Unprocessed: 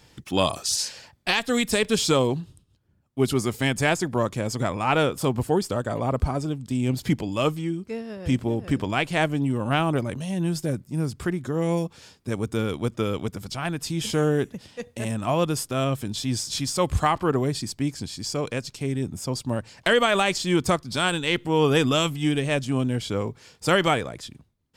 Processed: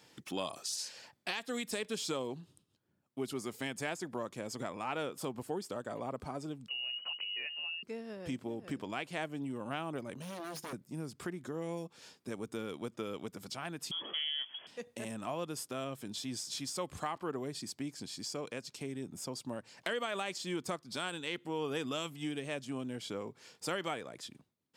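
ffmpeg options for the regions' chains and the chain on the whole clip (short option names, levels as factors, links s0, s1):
-filter_complex "[0:a]asettb=1/sr,asplit=3[s0][s1][s2];[s0]atrim=end=6.684[s3];[s1]atrim=start=6.68:end=7.83,asetpts=PTS-STARTPTS,afade=t=in:d=0.004:c=qsin,afade=t=out:st=1.146:d=0.004:c=qsin,lowshelf=f=130:t=q:w=1.5:g=11,acompressor=threshold=0.0631:ratio=6:attack=3.2:release=140:knee=1:detection=peak,lowpass=f=2600:t=q:w=0.5098,lowpass=f=2600:t=q:w=0.6013,lowpass=f=2600:t=q:w=0.9,lowpass=f=2600:t=q:w=2.563,afreqshift=-3000[s4];[s2]atrim=start=7.826[s5];[s3][s4]acrossfade=d=0.004:c1=hsin:c2=qsin[s6];[s6][s5]acrossfade=d=0.004:c1=qsin:c2=hsin,asettb=1/sr,asplit=3[s7][s8][s9];[s7]atrim=end=10.224[s10];[s8]atrim=start=10.22:end=10.73,asetpts=PTS-STARTPTS,afade=t=in:d=0.004:c=qsin,afade=t=out:st=0.506:d=0.004:c=qsin,aeval=exprs='0.0355*(abs(mod(val(0)/0.0355+3,4)-2)-1)':c=same,bandreject=f=7800:w=5.5[s11];[s9]atrim=start=10.726[s12];[s10][s11]acrossfade=d=0.004:c1=hsin:c2=qsin[s13];[s13][s12]acrossfade=d=0.004:c1=qsin:c2=hsin,asettb=1/sr,asplit=3[s14][s15][s16];[s14]atrim=end=13.914[s17];[s15]atrim=start=13.91:end=14.67,asetpts=PTS-STARTPTS,afade=t=in:d=0.004:c=qsin,afade=t=out:st=0.756:d=0.004:c=qsin,aeval=exprs='val(0)+0.5*0.0119*sgn(val(0))':c=same,highpass=130,lowpass=f=3000:t=q:w=0.5098,lowpass=f=3000:t=q:w=0.6013,lowpass=f=3000:t=q:w=0.9,lowpass=f=3000:t=q:w=2.563,afreqshift=-3500[s18];[s16]atrim=start=14.666[s19];[s17][s18]acrossfade=d=0.004:c1=hsin:c2=qsin[s20];[s20][s19]acrossfade=d=0.004:c1=qsin:c2=hsin,highpass=200,acompressor=threshold=0.0158:ratio=2,volume=0.531"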